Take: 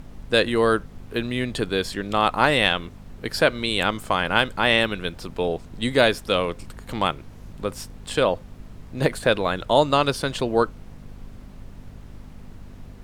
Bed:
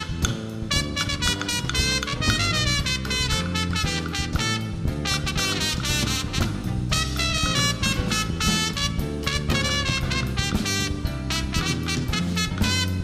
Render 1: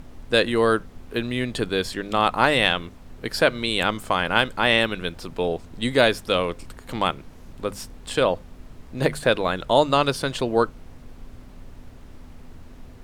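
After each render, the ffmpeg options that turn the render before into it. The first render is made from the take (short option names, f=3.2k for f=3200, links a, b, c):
-af "bandreject=f=50:t=h:w=4,bandreject=f=100:t=h:w=4,bandreject=f=150:t=h:w=4,bandreject=f=200:t=h:w=4"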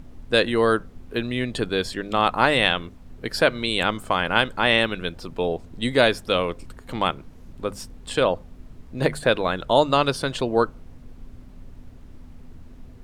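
-af "afftdn=nr=6:nf=-44"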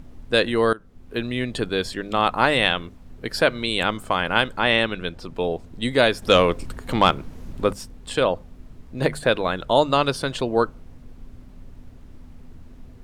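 -filter_complex "[0:a]asettb=1/sr,asplit=3[a][b][c];[a]atrim=end=4.594[d];[b]atrim=start=4.59:end=5.35,asetpts=PTS-STARTPTS,afade=t=in:d=0.004:c=qsin,afade=t=out:st=0.756:d=0.004:c=qsin,highshelf=f=9.7k:g=-8[e];[c]atrim=start=5.346[f];[d][e]acrossfade=d=0.004:c1=hsin:c2=qsin[g];[g][f]acrossfade=d=0.004:c1=qsin:c2=hsin,asettb=1/sr,asplit=3[h][i][j];[h]atrim=end=6.224[k];[i]atrim=start=6.22:end=7.73,asetpts=PTS-STARTPTS,afade=t=in:d=0.004:c=qsin,afade=t=out:st=1.506:d=0.004:c=qsin,acontrast=87[l];[j]atrim=start=7.726[m];[k][l]acrossfade=d=0.004:c1=hsin:c2=qsin[n];[n][m]acrossfade=d=0.004:c1=qsin:c2=hsin,asplit=2[o][p];[o]atrim=end=0.73,asetpts=PTS-STARTPTS,afade=t=out:st=0.726:d=0.004:c=hsin:silence=0.0891251[q];[p]atrim=start=0.73,asetpts=PTS-STARTPTS,afade=t=in:d=0.49:silence=0.0891251[r];[q][r]concat=n=2:v=0:a=1"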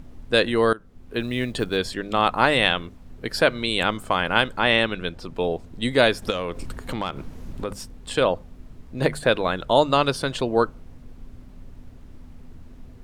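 -filter_complex "[0:a]asplit=3[a][b][c];[a]afade=t=out:st=1.19:d=0.02[d];[b]acrusher=bits=8:mode=log:mix=0:aa=0.000001,afade=t=in:st=1.19:d=0.02,afade=t=out:st=1.76:d=0.02[e];[c]afade=t=in:st=1.76:d=0.02[f];[d][e][f]amix=inputs=3:normalize=0,asplit=3[g][h][i];[g]afade=t=out:st=6.29:d=0.02[j];[h]acompressor=threshold=-25dB:ratio=4:attack=3.2:release=140:knee=1:detection=peak,afade=t=in:st=6.29:d=0.02,afade=t=out:st=7.71:d=0.02[k];[i]afade=t=in:st=7.71:d=0.02[l];[j][k][l]amix=inputs=3:normalize=0"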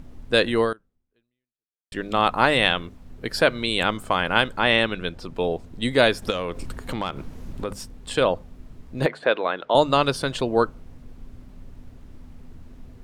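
-filter_complex "[0:a]asettb=1/sr,asplit=3[a][b][c];[a]atrim=end=9.064[d];[b]atrim=start=9.06:end=9.75,asetpts=PTS-STARTPTS,afade=t=in:d=0.004:c=qsin,afade=t=out:st=0.686:d=0.004:c=qsin,highpass=350,lowpass=3.1k[e];[c]atrim=start=9.746[f];[d][e]acrossfade=d=0.004:c1=hsin:c2=qsin[g];[g][f]acrossfade=d=0.004:c1=qsin:c2=hsin,asplit=2[h][i];[h]atrim=end=1.92,asetpts=PTS-STARTPTS,afade=t=out:st=0.61:d=1.31:c=exp[j];[i]atrim=start=1.92,asetpts=PTS-STARTPTS,afade=t=in:d=0.004:c=hsin[k];[j][k]concat=n=2:v=0:a=1"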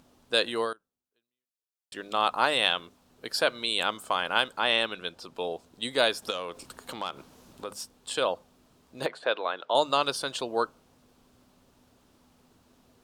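-af "highpass=f=1.1k:p=1,equalizer=f=2k:w=1.8:g=-8.5"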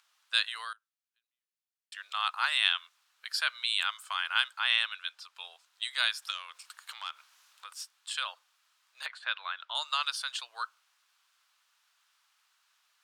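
-af "highpass=f=1.3k:w=0.5412,highpass=f=1.3k:w=1.3066,highshelf=f=7.1k:g=-6.5"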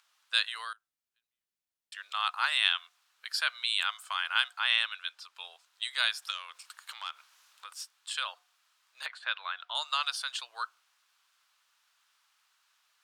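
-af "lowshelf=f=340:g=4.5,bandreject=f=362:t=h:w=4,bandreject=f=724:t=h:w=4"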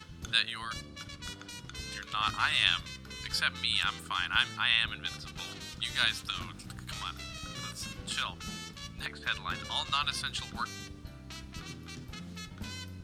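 -filter_complex "[1:a]volume=-19.5dB[a];[0:a][a]amix=inputs=2:normalize=0"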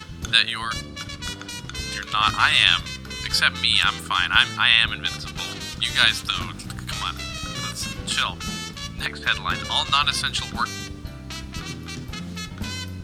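-af "volume=11dB,alimiter=limit=-1dB:level=0:latency=1"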